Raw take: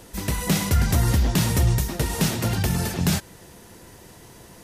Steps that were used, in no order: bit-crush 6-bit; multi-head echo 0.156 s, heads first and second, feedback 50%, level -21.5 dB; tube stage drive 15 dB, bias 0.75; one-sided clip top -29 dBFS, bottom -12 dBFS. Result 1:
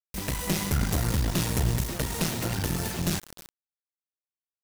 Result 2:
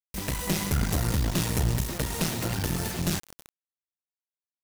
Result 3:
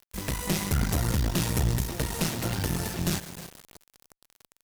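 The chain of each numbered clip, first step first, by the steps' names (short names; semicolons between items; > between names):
one-sided clip > tube stage > multi-head echo > bit-crush; one-sided clip > multi-head echo > tube stage > bit-crush; multi-head echo > one-sided clip > bit-crush > tube stage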